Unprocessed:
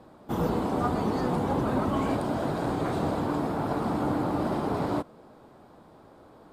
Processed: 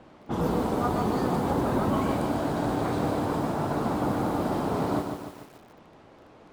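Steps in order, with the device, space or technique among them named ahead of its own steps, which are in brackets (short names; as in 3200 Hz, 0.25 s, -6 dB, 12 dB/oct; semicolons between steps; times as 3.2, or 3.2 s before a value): cassette deck with a dynamic noise filter (white noise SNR 25 dB; low-pass opened by the level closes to 2100 Hz, open at -23 dBFS); lo-fi delay 0.147 s, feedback 55%, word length 8-bit, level -6 dB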